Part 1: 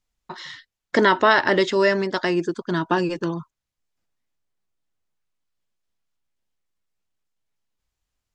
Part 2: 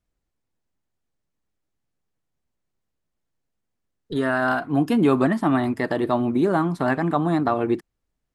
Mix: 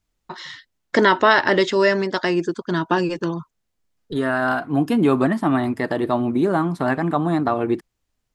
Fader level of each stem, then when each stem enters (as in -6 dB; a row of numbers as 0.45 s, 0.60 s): +1.5 dB, +1.0 dB; 0.00 s, 0.00 s